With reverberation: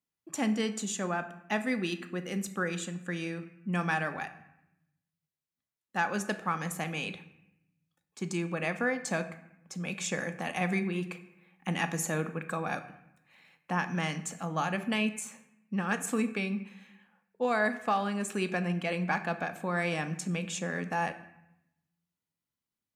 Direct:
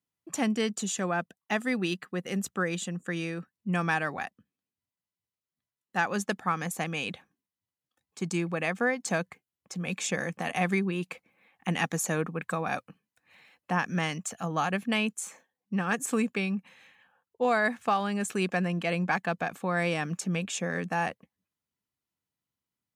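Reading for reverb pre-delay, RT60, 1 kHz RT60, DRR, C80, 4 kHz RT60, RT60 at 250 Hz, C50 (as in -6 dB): 3 ms, 0.85 s, 0.85 s, 8.0 dB, 15.0 dB, 0.60 s, 1.1 s, 12.5 dB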